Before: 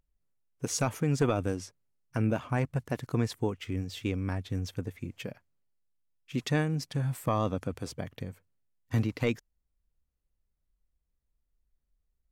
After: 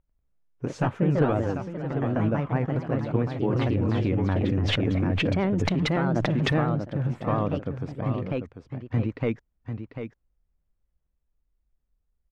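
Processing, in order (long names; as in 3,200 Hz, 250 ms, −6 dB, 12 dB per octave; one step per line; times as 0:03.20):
pitch vibrato 7.5 Hz 71 cents
single-tap delay 744 ms −8.5 dB
delay with pitch and tempo change per echo 95 ms, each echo +2 semitones, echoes 2
Bessel low-pass filter 1,600 Hz, order 2
0:03.48–0:06.52: envelope flattener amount 100%
level +2.5 dB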